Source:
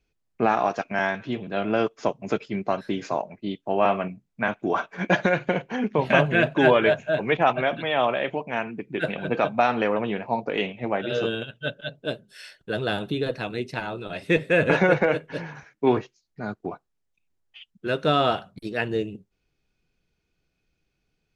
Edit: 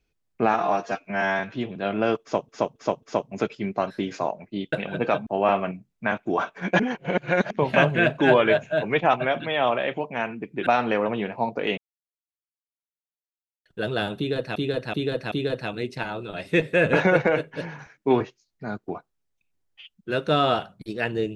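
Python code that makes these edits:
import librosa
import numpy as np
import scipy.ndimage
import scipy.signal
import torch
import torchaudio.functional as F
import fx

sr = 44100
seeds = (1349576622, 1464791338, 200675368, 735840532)

y = fx.edit(x, sr, fx.stretch_span(start_s=0.54, length_s=0.57, factor=1.5),
    fx.repeat(start_s=1.93, length_s=0.27, count=4),
    fx.reverse_span(start_s=5.16, length_s=0.71),
    fx.move(start_s=9.03, length_s=0.54, to_s=3.63),
    fx.silence(start_s=10.68, length_s=1.88),
    fx.repeat(start_s=13.08, length_s=0.38, count=4), tone=tone)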